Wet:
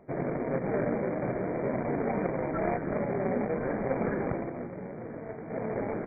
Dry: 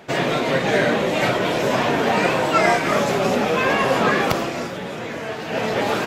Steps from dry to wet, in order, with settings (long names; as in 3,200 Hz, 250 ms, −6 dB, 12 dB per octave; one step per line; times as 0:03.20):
running median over 41 samples
linear-phase brick-wall low-pass 2,400 Hz
level −7.5 dB